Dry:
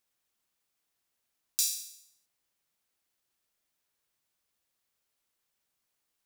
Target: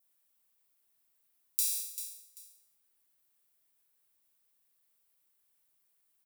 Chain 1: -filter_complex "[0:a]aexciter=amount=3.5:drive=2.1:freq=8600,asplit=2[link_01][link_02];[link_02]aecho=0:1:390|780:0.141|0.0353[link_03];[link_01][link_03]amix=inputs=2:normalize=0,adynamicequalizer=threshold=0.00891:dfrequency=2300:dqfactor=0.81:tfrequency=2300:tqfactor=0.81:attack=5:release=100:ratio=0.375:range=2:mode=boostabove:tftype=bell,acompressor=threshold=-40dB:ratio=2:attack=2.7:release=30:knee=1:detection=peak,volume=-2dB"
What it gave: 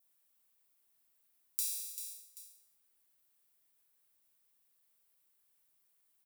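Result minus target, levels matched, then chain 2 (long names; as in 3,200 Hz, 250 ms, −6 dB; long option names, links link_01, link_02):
downward compressor: peak gain reduction +5 dB
-filter_complex "[0:a]aexciter=amount=3.5:drive=2.1:freq=8600,asplit=2[link_01][link_02];[link_02]aecho=0:1:390|780:0.141|0.0353[link_03];[link_01][link_03]amix=inputs=2:normalize=0,adynamicequalizer=threshold=0.00891:dfrequency=2300:dqfactor=0.81:tfrequency=2300:tqfactor=0.81:attack=5:release=100:ratio=0.375:range=2:mode=boostabove:tftype=bell,acompressor=threshold=-29.5dB:ratio=2:attack=2.7:release=30:knee=1:detection=peak,volume=-2dB"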